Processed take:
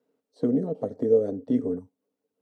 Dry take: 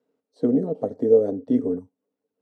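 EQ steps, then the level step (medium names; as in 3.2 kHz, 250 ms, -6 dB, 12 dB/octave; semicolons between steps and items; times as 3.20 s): dynamic bell 330 Hz, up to -4 dB, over -31 dBFS, Q 1; dynamic bell 840 Hz, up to -6 dB, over -35 dBFS, Q 1.5; 0.0 dB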